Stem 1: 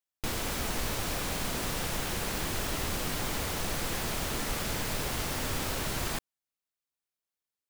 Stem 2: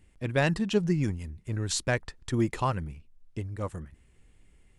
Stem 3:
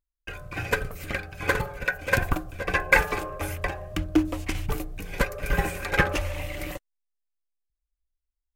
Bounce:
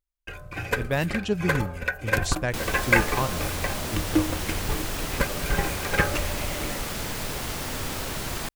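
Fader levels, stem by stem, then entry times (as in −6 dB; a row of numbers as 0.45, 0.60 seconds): +1.5, −0.5, −1.0 decibels; 2.30, 0.55, 0.00 seconds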